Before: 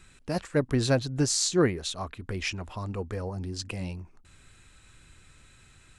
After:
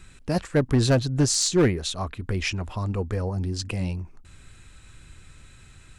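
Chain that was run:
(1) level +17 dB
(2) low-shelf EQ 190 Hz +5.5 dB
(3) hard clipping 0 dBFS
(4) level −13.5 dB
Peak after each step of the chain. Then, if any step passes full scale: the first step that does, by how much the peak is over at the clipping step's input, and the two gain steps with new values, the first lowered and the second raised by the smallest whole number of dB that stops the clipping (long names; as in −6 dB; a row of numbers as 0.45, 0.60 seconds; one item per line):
+7.0, +7.0, 0.0, −13.5 dBFS
step 1, 7.0 dB
step 1 +10 dB, step 4 −6.5 dB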